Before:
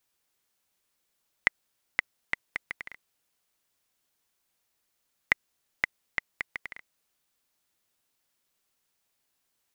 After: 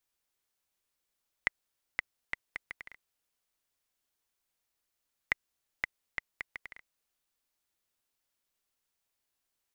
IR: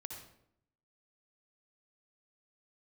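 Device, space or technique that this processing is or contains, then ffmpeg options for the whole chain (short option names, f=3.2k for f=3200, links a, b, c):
low shelf boost with a cut just above: -af "lowshelf=f=79:g=6,equalizer=f=160:t=o:w=1.2:g=-3.5,volume=-6.5dB"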